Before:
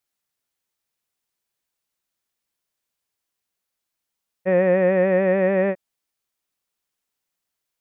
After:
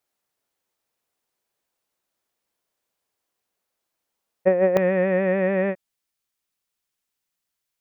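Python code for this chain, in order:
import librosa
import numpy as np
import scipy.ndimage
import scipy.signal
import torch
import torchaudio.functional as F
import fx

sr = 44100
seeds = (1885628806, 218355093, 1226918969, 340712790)

y = fx.peak_eq(x, sr, hz=550.0, db=fx.steps((0.0, 8.0), (4.77, -3.0)), octaves=2.5)
y = fx.over_compress(y, sr, threshold_db=-13.0, ratio=-0.5)
y = y * 10.0 ** (-2.5 / 20.0)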